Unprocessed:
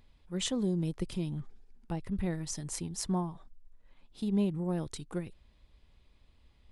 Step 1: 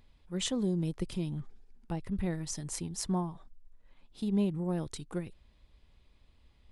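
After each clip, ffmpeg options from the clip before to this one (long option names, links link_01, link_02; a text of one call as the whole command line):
ffmpeg -i in.wav -af anull out.wav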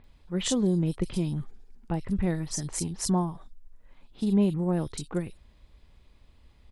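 ffmpeg -i in.wav -filter_complex "[0:a]acrossover=split=3300[link_01][link_02];[link_02]adelay=40[link_03];[link_01][link_03]amix=inputs=2:normalize=0,volume=6dB" out.wav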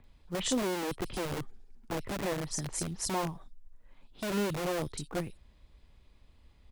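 ffmpeg -i in.wav -filter_complex "[0:a]acrossover=split=220|730|3700[link_01][link_02][link_03][link_04];[link_01]aeval=exprs='(mod(29.9*val(0)+1,2)-1)/29.9':channel_layout=same[link_05];[link_02]acrusher=bits=4:mode=log:mix=0:aa=0.000001[link_06];[link_05][link_06][link_03][link_04]amix=inputs=4:normalize=0,volume=-3dB" out.wav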